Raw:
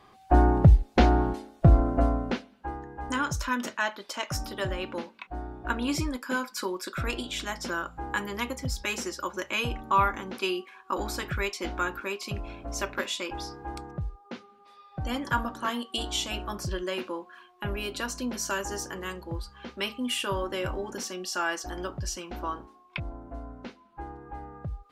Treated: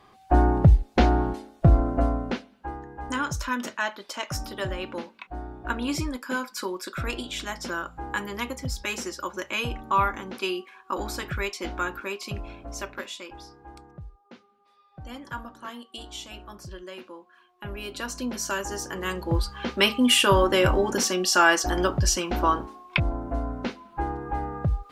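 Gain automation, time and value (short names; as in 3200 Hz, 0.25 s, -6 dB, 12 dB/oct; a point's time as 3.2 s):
12.41 s +0.5 dB
13.46 s -8.5 dB
17.26 s -8.5 dB
18.22 s +1.5 dB
18.81 s +1.5 dB
19.37 s +11 dB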